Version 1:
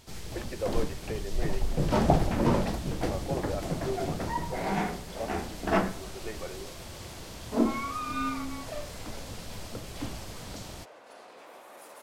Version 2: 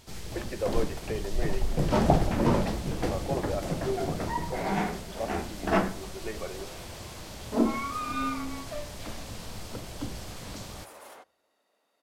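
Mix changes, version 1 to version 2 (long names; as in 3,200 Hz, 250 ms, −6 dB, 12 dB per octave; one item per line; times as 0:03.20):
second sound: entry −0.95 s
reverb: on, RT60 1.0 s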